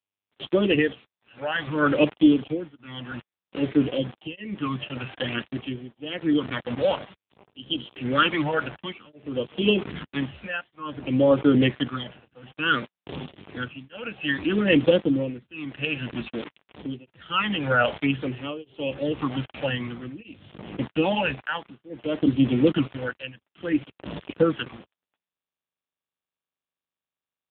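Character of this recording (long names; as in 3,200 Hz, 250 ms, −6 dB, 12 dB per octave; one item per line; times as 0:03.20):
phaser sweep stages 12, 0.55 Hz, lowest notch 340–1,800 Hz
a quantiser's noise floor 6 bits, dither none
tremolo triangle 0.63 Hz, depth 100%
AMR narrowband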